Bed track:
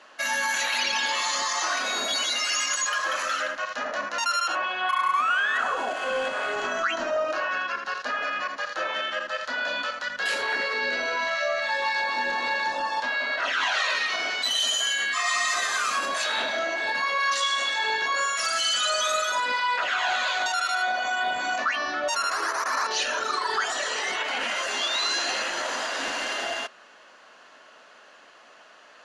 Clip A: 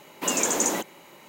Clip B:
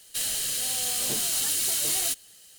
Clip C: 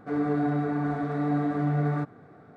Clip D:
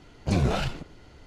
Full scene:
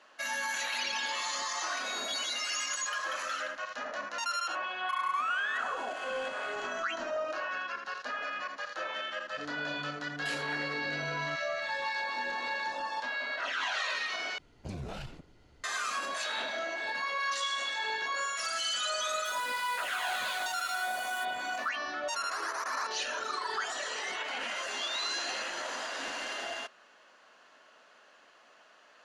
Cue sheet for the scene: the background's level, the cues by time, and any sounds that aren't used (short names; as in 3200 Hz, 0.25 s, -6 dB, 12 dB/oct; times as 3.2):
bed track -8 dB
9.31 add C -13 dB + compressor, threshold -27 dBFS
14.38 replace with D -10.5 dB + compressor 3:1, threshold -26 dBFS
19.11 add B -11 dB + compressor, threshold -34 dBFS
not used: A